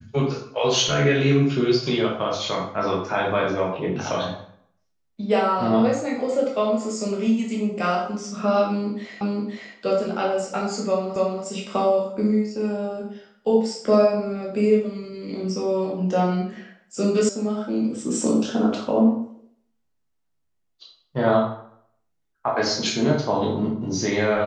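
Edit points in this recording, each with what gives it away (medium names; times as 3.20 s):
9.21 s: repeat of the last 0.52 s
11.16 s: repeat of the last 0.28 s
17.29 s: sound stops dead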